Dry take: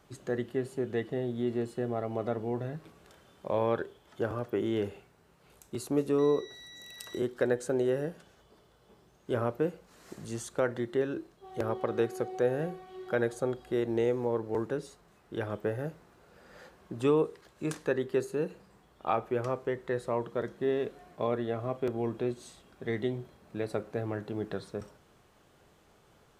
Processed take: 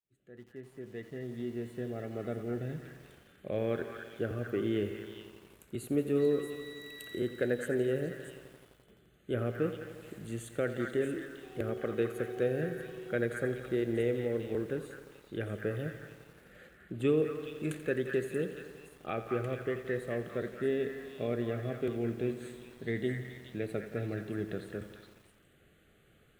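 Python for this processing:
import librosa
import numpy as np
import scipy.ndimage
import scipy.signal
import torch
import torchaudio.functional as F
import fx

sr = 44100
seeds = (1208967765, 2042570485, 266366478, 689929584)

y = fx.fade_in_head(x, sr, length_s=2.7)
y = fx.fixed_phaser(y, sr, hz=2300.0, stages=4)
y = fx.echo_stepped(y, sr, ms=211, hz=1400.0, octaves=1.4, feedback_pct=70, wet_db=-1)
y = fx.echo_crushed(y, sr, ms=86, feedback_pct=80, bits=9, wet_db=-13.0)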